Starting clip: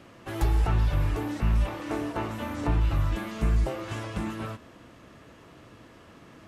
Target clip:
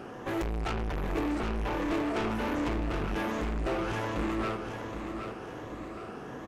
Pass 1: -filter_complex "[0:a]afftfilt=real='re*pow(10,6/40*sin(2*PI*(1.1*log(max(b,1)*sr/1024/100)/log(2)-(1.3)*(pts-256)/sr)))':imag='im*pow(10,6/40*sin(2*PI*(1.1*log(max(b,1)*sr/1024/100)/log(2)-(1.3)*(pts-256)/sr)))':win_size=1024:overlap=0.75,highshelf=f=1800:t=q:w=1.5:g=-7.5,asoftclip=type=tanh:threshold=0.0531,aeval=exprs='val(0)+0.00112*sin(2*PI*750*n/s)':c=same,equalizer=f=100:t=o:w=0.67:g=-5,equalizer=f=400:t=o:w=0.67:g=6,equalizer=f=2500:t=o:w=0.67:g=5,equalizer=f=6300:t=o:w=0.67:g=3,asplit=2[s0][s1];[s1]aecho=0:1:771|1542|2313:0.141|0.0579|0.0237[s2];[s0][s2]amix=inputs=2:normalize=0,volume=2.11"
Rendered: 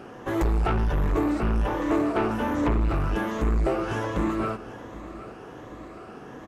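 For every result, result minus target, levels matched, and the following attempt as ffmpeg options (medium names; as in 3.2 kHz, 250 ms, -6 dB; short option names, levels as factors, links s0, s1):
echo-to-direct -9.5 dB; saturation: distortion -6 dB
-filter_complex "[0:a]afftfilt=real='re*pow(10,6/40*sin(2*PI*(1.1*log(max(b,1)*sr/1024/100)/log(2)-(1.3)*(pts-256)/sr)))':imag='im*pow(10,6/40*sin(2*PI*(1.1*log(max(b,1)*sr/1024/100)/log(2)-(1.3)*(pts-256)/sr)))':win_size=1024:overlap=0.75,highshelf=f=1800:t=q:w=1.5:g=-7.5,asoftclip=type=tanh:threshold=0.0531,aeval=exprs='val(0)+0.00112*sin(2*PI*750*n/s)':c=same,equalizer=f=100:t=o:w=0.67:g=-5,equalizer=f=400:t=o:w=0.67:g=6,equalizer=f=2500:t=o:w=0.67:g=5,equalizer=f=6300:t=o:w=0.67:g=3,asplit=2[s0][s1];[s1]aecho=0:1:771|1542|2313|3084|3855:0.422|0.173|0.0709|0.0291|0.0119[s2];[s0][s2]amix=inputs=2:normalize=0,volume=2.11"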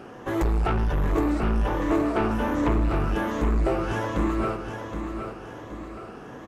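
saturation: distortion -6 dB
-filter_complex "[0:a]afftfilt=real='re*pow(10,6/40*sin(2*PI*(1.1*log(max(b,1)*sr/1024/100)/log(2)-(1.3)*(pts-256)/sr)))':imag='im*pow(10,6/40*sin(2*PI*(1.1*log(max(b,1)*sr/1024/100)/log(2)-(1.3)*(pts-256)/sr)))':win_size=1024:overlap=0.75,highshelf=f=1800:t=q:w=1.5:g=-7.5,asoftclip=type=tanh:threshold=0.0141,aeval=exprs='val(0)+0.00112*sin(2*PI*750*n/s)':c=same,equalizer=f=100:t=o:w=0.67:g=-5,equalizer=f=400:t=o:w=0.67:g=6,equalizer=f=2500:t=o:w=0.67:g=5,equalizer=f=6300:t=o:w=0.67:g=3,asplit=2[s0][s1];[s1]aecho=0:1:771|1542|2313|3084|3855:0.422|0.173|0.0709|0.0291|0.0119[s2];[s0][s2]amix=inputs=2:normalize=0,volume=2.11"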